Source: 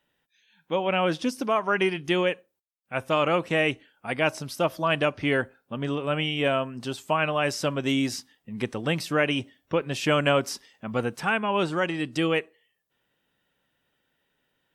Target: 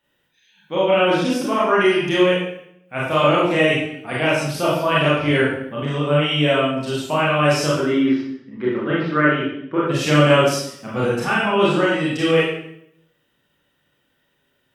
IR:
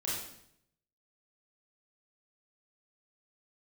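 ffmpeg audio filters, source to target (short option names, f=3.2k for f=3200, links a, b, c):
-filter_complex "[0:a]asettb=1/sr,asplit=3[a][b][c];[a]atrim=end=7.674[d];[b]atrim=start=7.67:end=9.84,asetpts=PTS-STARTPTS,afade=t=in:d=0.004:c=qsin,afade=t=out:st=2.166:d=0.004:c=qsin,highpass=180,equalizer=f=360:t=q:w=4:g=6,equalizer=f=510:t=q:w=4:g=-4,equalizer=f=740:t=q:w=4:g=-8,equalizer=f=1.4k:t=q:w=4:g=6,equalizer=f=2.6k:t=q:w=4:g=-10,lowpass=f=2.8k:w=0.5412,lowpass=f=2.8k:w=1.3066[e];[c]atrim=start=9.836[f];[d][e]acrossfade=d=0.004:c1=hsin:c2=qsin[g];[g][f]acrossfade=d=0.004:c1=qsin:c2=hsin[h];[1:a]atrim=start_sample=2205[i];[h][i]afir=irnorm=-1:irlink=0,volume=3dB"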